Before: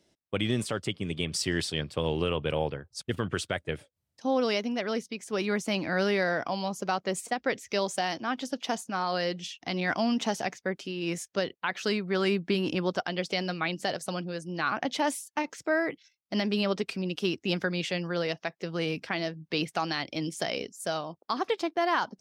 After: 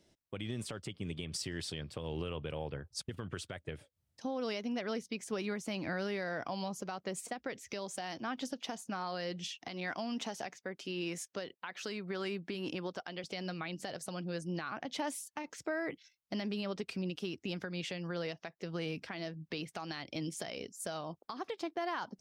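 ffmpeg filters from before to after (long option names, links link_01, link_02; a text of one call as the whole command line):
ffmpeg -i in.wav -filter_complex "[0:a]asettb=1/sr,asplit=3[link_01][link_02][link_03];[link_01]atrim=end=9.564[link_04];[link_02]atrim=start=9.56:end=13.24,asetpts=PTS-STARTPTS,afade=type=in:duration=0.004:curve=qsin,afade=type=out:start_time=3.676:duration=0.004:curve=qsin,highpass=frequency=250:poles=1[link_05];[link_03]atrim=start=13.236[link_06];[link_04][link_05]acrossfade=duration=0.004:curve1=hsin:curve2=qsin[link_07];[link_07][link_06]acrossfade=duration=0.004:curve1=qsin:curve2=hsin,lowshelf=frequency=100:gain=8,acompressor=threshold=-29dB:ratio=6,alimiter=level_in=2dB:limit=-24dB:level=0:latency=1:release=334,volume=-2dB,volume=-1.5dB" out.wav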